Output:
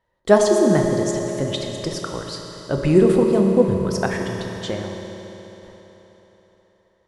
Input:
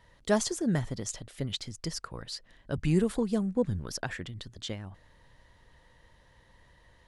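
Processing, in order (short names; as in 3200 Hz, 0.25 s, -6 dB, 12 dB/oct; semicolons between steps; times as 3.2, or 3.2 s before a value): bell 590 Hz +10.5 dB 3 oct; gate with hold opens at -43 dBFS; reverb RT60 4.1 s, pre-delay 3 ms, DRR 1.5 dB; gain +3 dB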